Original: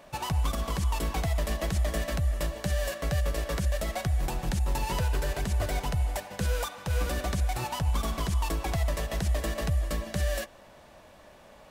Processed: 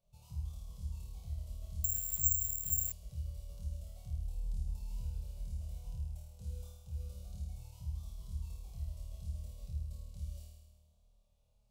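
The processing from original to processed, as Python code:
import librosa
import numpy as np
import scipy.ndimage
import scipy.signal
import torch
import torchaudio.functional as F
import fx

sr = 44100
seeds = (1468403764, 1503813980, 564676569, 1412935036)

y = fx.tone_stack(x, sr, knobs='10-0-1')
y = fx.fixed_phaser(y, sr, hz=730.0, stages=4)
y = fx.room_flutter(y, sr, wall_m=4.5, rt60_s=1.2)
y = fx.resample_bad(y, sr, factor=6, down='none', up='zero_stuff', at=(1.84, 2.92))
y = y * 10.0 ** (-6.5 / 20.0)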